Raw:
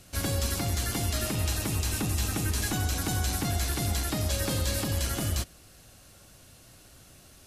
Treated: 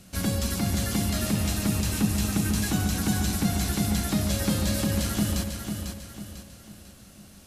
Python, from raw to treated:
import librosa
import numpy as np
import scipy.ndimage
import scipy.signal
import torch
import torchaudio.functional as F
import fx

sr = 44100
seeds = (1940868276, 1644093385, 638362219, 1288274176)

p1 = fx.peak_eq(x, sr, hz=200.0, db=13.5, octaves=0.41)
y = p1 + fx.echo_feedback(p1, sr, ms=497, feedback_pct=41, wet_db=-6.5, dry=0)